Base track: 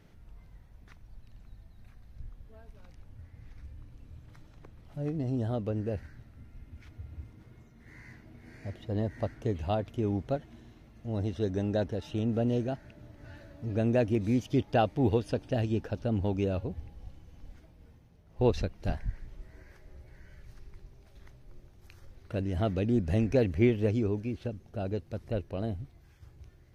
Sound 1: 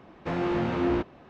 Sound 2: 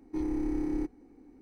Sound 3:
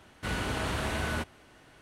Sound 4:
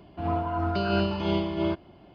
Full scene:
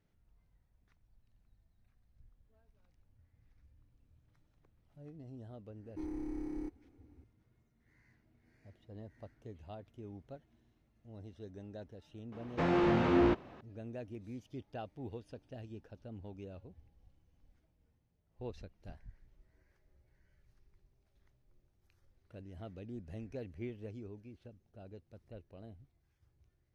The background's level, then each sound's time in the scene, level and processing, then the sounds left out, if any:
base track −18.5 dB
0:05.83: mix in 2 −9.5 dB
0:12.32: mix in 1 −1.5 dB
not used: 3, 4

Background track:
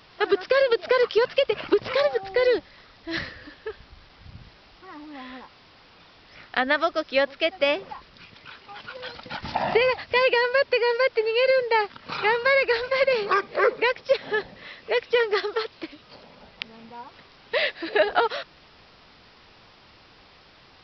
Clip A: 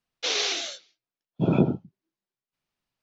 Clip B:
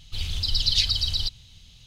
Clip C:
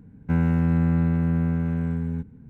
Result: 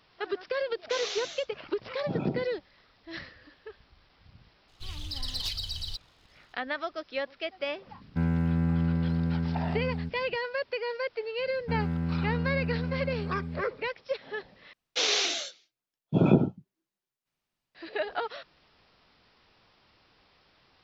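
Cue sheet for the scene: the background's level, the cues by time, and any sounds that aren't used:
background track −11 dB
0:00.67: mix in A −9.5 dB
0:04.68: mix in B −17 dB + leveller curve on the samples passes 2
0:07.87: mix in C −5.5 dB
0:11.39: mix in C −9 dB
0:14.73: overwrite with A

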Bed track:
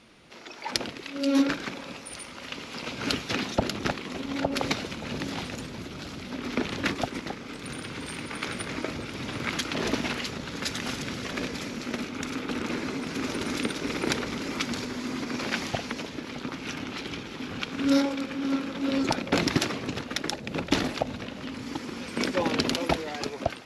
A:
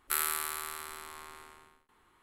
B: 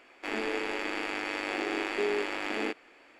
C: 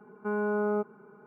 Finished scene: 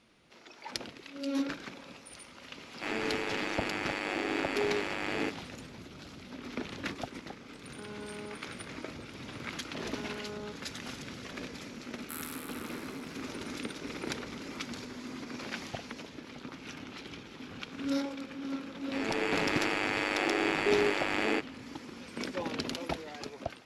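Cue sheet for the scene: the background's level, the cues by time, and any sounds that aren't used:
bed track −9.5 dB
0:02.58: mix in B −1.5 dB
0:07.53: mix in C −16.5 dB
0:09.70: mix in C −15 dB
0:11.99: mix in A −12 dB
0:18.68: mix in B −6.5 dB + automatic gain control gain up to 9 dB

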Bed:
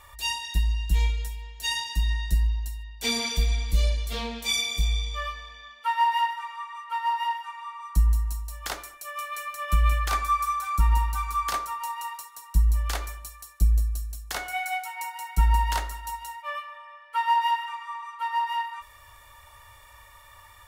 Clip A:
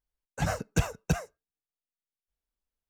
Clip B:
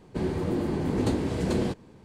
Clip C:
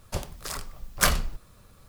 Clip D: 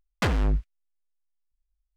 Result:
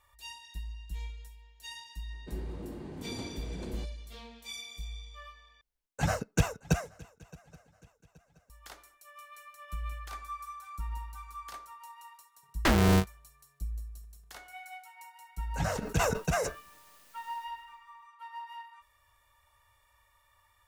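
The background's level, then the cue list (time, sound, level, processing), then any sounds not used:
bed −16.5 dB
0:02.12: mix in B −15 dB
0:05.61: overwrite with A + feedback echo with a long and a short gap by turns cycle 825 ms, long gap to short 3 to 1, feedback 36%, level −23.5 dB
0:12.43: mix in D −0.5 dB + ring modulator with a square carrier 140 Hz
0:15.18: mix in A −4.5 dB + level that may fall only so fast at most 33 dB per second
not used: C

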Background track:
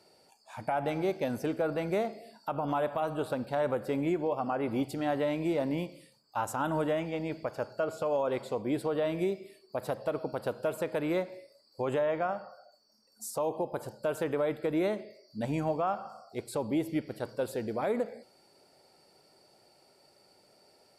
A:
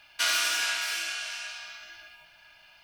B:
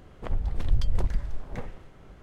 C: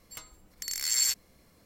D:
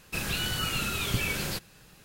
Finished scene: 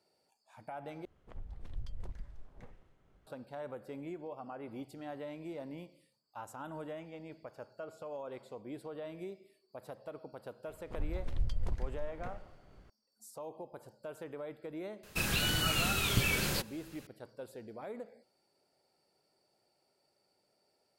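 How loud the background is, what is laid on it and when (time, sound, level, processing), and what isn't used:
background track −13.5 dB
0:01.05: overwrite with B −18 dB
0:10.68: mix in B −9.5 dB
0:15.03: mix in D −1 dB
not used: A, C

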